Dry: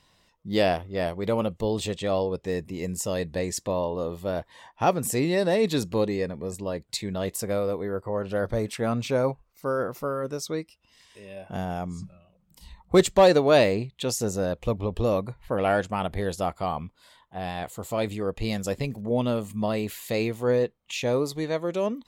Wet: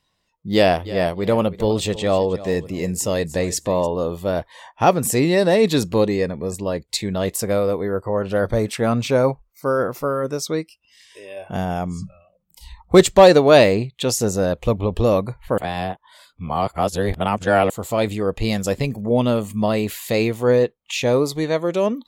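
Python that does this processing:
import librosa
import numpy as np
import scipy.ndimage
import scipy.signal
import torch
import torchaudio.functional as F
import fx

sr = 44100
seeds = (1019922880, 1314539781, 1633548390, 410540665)

y = fx.echo_feedback(x, sr, ms=312, feedback_pct=21, wet_db=-16.0, at=(0.84, 3.85), fade=0.02)
y = fx.edit(y, sr, fx.reverse_span(start_s=15.58, length_s=2.12), tone=tone)
y = fx.noise_reduce_blind(y, sr, reduce_db=15)
y = y * 10.0 ** (7.0 / 20.0)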